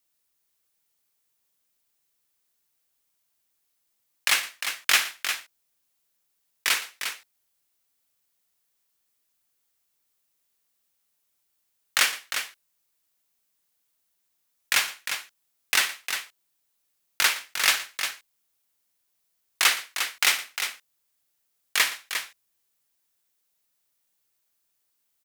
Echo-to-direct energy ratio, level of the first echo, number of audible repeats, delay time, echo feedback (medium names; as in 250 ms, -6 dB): -7.0 dB, -16.0 dB, 3, 58 ms, no regular repeats